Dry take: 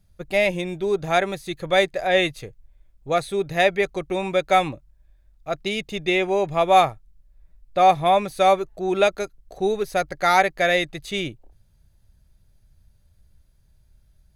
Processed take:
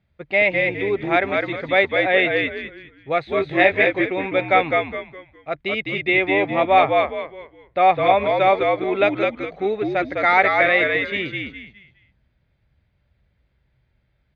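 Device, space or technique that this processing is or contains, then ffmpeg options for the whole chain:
frequency-shifting delay pedal into a guitar cabinet: -filter_complex "[0:a]asplit=5[s0][s1][s2][s3][s4];[s1]adelay=206,afreqshift=-66,volume=0.668[s5];[s2]adelay=412,afreqshift=-132,volume=0.207[s6];[s3]adelay=618,afreqshift=-198,volume=0.0646[s7];[s4]adelay=824,afreqshift=-264,volume=0.02[s8];[s0][s5][s6][s7][s8]amix=inputs=5:normalize=0,highpass=88,equalizer=f=97:t=q:w=4:g=-6,equalizer=f=180:t=q:w=4:g=-5,equalizer=f=2100:t=q:w=4:g=8,lowpass=f=3400:w=0.5412,lowpass=f=3400:w=1.3066,asettb=1/sr,asplit=3[s9][s10][s11];[s9]atrim=end=3.354[s12];[s10]atrim=start=3.35:end=4.05,asetpts=PTS-STARTPTS,afade=t=in:d=0.004:c=qsin,afade=t=out:st=0.696:d=0.004:c=qsin,asplit=2[s13][s14];[s14]adelay=21,volume=0.631[s15];[s13][s15]amix=inputs=2:normalize=0,atrim=end_sample=30870[s16];[s11]atrim=start=4.046[s17];[s12][s16]acrossfade=d=0.004:c1=hsin:c2=qsin[s18];[s18][s17]acrossfade=d=0.004:c1=qsin:c2=hsin"

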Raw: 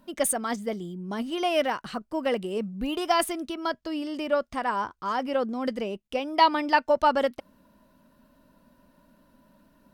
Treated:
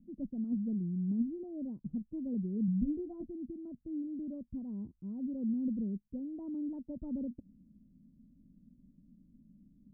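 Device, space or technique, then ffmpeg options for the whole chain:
the neighbour's flat through the wall: -filter_complex "[0:a]asettb=1/sr,asplit=3[s0][s1][s2];[s0]atrim=end=2.664[s3];[s1]atrim=start=2.66:end=3.27,asetpts=PTS-STARTPTS,afade=t=in:d=0.004:c=qsin,afade=t=out:st=0.606:d=0.004:c=qsin,asplit=2[s4][s5];[s5]adelay=17,volume=0.668[s6];[s4][s6]amix=inputs=2:normalize=0,atrim=end_sample=26901[s7];[s2]atrim=start=3.266[s8];[s3][s7]acrossfade=d=0.004:c1=hsin:c2=qsin[s9];[s9][s8]acrossfade=d=0.004:c1=qsin:c2=hsin,lowpass=f=250:w=0.5412,lowpass=f=250:w=1.3066,equalizer=f=190:t=o:w=0.77:g=3.5"

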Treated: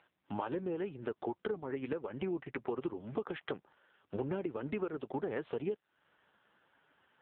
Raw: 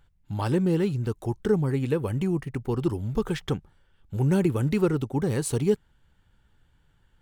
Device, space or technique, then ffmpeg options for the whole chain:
voicemail: -af "highpass=400,lowpass=2800,acompressor=threshold=0.00891:ratio=10,volume=2.66" -ar 8000 -c:a libopencore_amrnb -b:a 5900

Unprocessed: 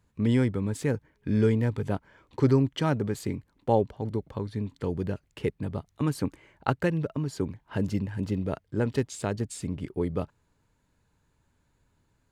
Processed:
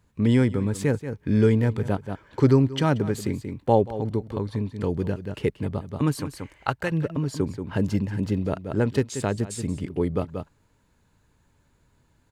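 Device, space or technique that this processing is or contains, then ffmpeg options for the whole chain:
ducked delay: -filter_complex "[0:a]asettb=1/sr,asplit=3[s0][s1][s2];[s0]atrim=end=6.154[s3];[s1]atrim=start=6.15:end=6.92,asetpts=PTS-STARTPTS,afade=t=in:d=0.004:c=qsin,afade=t=out:st=0.766:d=0.004:c=qsin,equalizer=f=240:w=0.57:g=-10.5[s4];[s2]atrim=start=6.916[s5];[s3][s4]acrossfade=d=0.004:c1=hsin:c2=qsin[s6];[s6][s5]acrossfade=d=0.004:c1=qsin:c2=hsin,asplit=3[s7][s8][s9];[s8]adelay=182,volume=0.708[s10];[s9]apad=whole_len=551235[s11];[s10][s11]sidechaincompress=threshold=0.00794:ratio=8:attack=40:release=189[s12];[s7][s12]amix=inputs=2:normalize=0,volume=1.58"

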